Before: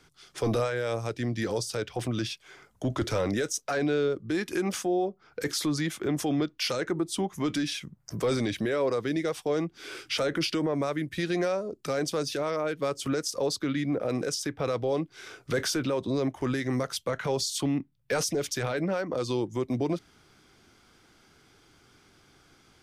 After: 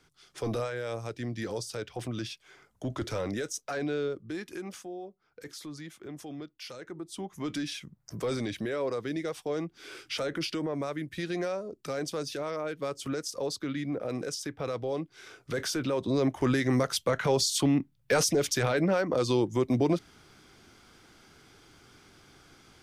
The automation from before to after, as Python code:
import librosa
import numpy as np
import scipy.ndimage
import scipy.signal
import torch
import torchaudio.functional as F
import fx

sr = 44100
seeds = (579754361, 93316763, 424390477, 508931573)

y = fx.gain(x, sr, db=fx.line((4.07, -5.0), (4.95, -14.0), (6.81, -14.0), (7.55, -4.5), (15.55, -4.5), (16.37, 3.0)))